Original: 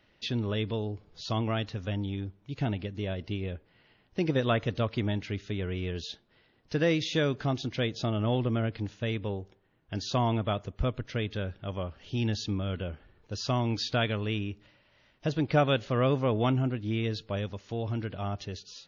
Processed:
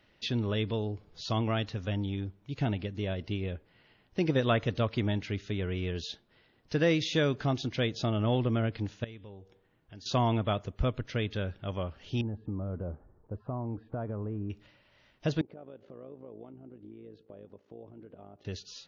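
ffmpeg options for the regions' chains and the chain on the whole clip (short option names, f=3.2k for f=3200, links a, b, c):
-filter_complex "[0:a]asettb=1/sr,asplit=3[a][b][c];[a]atrim=end=9.044[d];[b]atrim=start=9.04:end=10.06,asetpts=PTS-STARTPTS,afade=t=in:d=0.004:c=qsin,afade=t=out:st=1.016:d=0.004:c=qsin,bandreject=f=239.6:t=h:w=4,bandreject=f=479.2:t=h:w=4,bandreject=f=718.8:t=h:w=4,bandreject=f=958.4:t=h:w=4,bandreject=f=1.198k:t=h:w=4,bandreject=f=1.4376k:t=h:w=4,bandreject=f=1.6772k:t=h:w=4,bandreject=f=1.9168k:t=h:w=4,bandreject=f=2.1564k:t=h:w=4,bandreject=f=2.396k:t=h:w=4,bandreject=f=2.6356k:t=h:w=4,bandreject=f=2.8752k:t=h:w=4,bandreject=f=3.1148k:t=h:w=4,bandreject=f=3.3544k:t=h:w=4,bandreject=f=3.594k:t=h:w=4,bandreject=f=3.8336k:t=h:w=4,acompressor=threshold=-56dB:ratio=2:attack=3.2:release=140:knee=1:detection=peak[e];[c]atrim=start=10.056[f];[d][e]acrossfade=d=0.004:c1=hsin:c2=qsin[g];[g][f]acrossfade=d=0.004:c1=qsin:c2=hsin,asettb=1/sr,asplit=3[h][i][j];[h]atrim=end=12.214[k];[i]atrim=start=12.21:end=14.5,asetpts=PTS-STARTPTS,afade=t=in:d=0.004:c=qsin,afade=t=out:st=2.286:d=0.004:c=qsin,lowpass=f=1.1k:w=0.5412,lowpass=f=1.1k:w=1.3066,acompressor=threshold=-31dB:ratio=5:attack=3.2:release=140:knee=1:detection=peak[l];[j]atrim=start=14.496[m];[k][l]acrossfade=d=0.004:c1=hsin:c2=qsin[n];[n][m]acrossfade=d=0.004:c1=qsin:c2=hsin,asettb=1/sr,asplit=3[o][p][q];[o]atrim=end=15.414[r];[p]atrim=start=15.41:end=18.45,asetpts=PTS-STARTPTS,afade=t=in:d=0.004:c=qsin,afade=t=out:st=3.036:d=0.004:c=qsin,acompressor=threshold=-36dB:ratio=12:attack=3.2:release=140:knee=1:detection=peak,tremolo=f=55:d=0.621,bandpass=f=400:t=q:w=1.3[s];[q]atrim=start=18.446[t];[r][s]acrossfade=d=0.004:c1=hsin:c2=qsin[u];[u][t]acrossfade=d=0.004:c1=qsin:c2=hsin"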